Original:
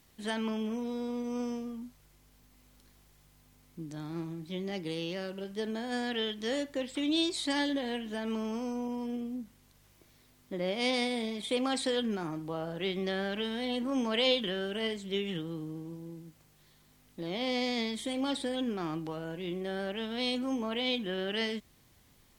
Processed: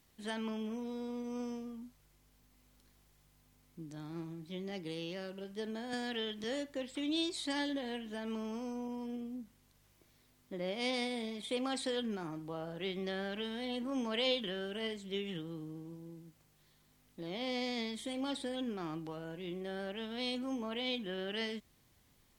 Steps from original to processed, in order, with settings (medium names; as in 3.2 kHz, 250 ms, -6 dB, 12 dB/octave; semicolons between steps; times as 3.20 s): 5.93–6.44 s: three bands compressed up and down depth 70%; trim -5.5 dB